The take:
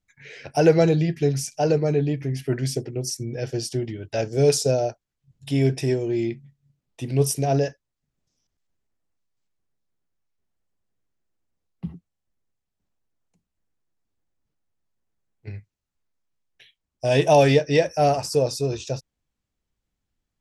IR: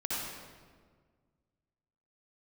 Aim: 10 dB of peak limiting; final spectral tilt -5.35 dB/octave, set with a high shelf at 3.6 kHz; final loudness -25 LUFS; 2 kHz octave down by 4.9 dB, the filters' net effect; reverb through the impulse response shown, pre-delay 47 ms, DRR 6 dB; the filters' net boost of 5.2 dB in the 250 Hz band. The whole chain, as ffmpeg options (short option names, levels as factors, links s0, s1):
-filter_complex "[0:a]equalizer=f=250:t=o:g=7.5,equalizer=f=2000:t=o:g=-8.5,highshelf=f=3600:g=5.5,alimiter=limit=0.251:level=0:latency=1,asplit=2[s0][s1];[1:a]atrim=start_sample=2205,adelay=47[s2];[s1][s2]afir=irnorm=-1:irlink=0,volume=0.266[s3];[s0][s3]amix=inputs=2:normalize=0,volume=0.75"